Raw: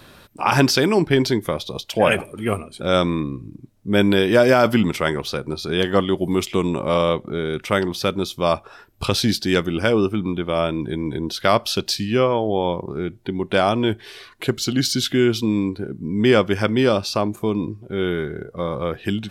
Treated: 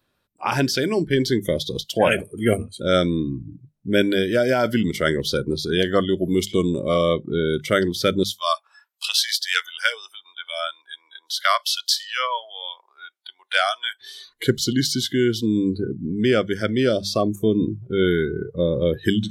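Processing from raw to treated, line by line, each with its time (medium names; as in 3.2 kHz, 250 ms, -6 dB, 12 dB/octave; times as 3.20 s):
8.23–14.01 s: high-pass 870 Hz 24 dB/octave
whole clip: hum notches 50/100/150/200 Hz; spectral noise reduction 20 dB; gain riding within 5 dB 0.5 s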